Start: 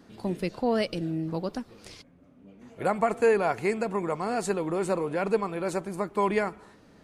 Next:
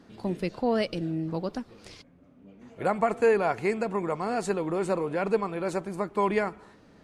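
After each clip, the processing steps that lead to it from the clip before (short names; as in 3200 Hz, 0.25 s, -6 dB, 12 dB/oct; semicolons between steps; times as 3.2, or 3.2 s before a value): high shelf 10000 Hz -10 dB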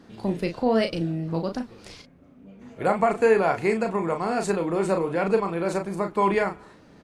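doubler 36 ms -6.5 dB; gain +3 dB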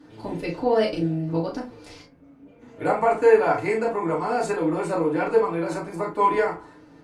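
FDN reverb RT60 0.3 s, low-frequency decay 0.8×, high-frequency decay 0.55×, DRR -4.5 dB; gain -5.5 dB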